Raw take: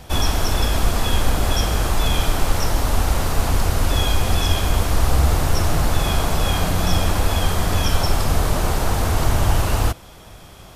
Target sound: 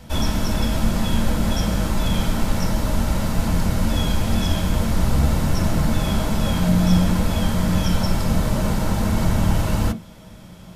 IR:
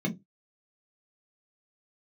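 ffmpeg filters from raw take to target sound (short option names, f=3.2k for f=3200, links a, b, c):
-filter_complex "[0:a]asplit=2[a][b];[1:a]atrim=start_sample=2205,lowshelf=f=460:g=-6[c];[b][c]afir=irnorm=-1:irlink=0,volume=-8dB[d];[a][d]amix=inputs=2:normalize=0,volume=-3dB"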